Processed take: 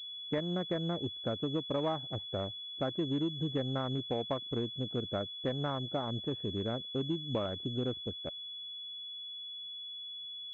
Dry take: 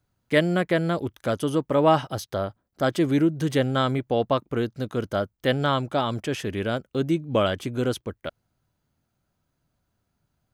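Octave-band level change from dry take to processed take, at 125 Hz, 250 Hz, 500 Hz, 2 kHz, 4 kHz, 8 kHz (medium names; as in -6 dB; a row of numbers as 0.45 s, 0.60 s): -9.5 dB, -10.5 dB, -12.0 dB, -18.5 dB, -0.5 dB, under -25 dB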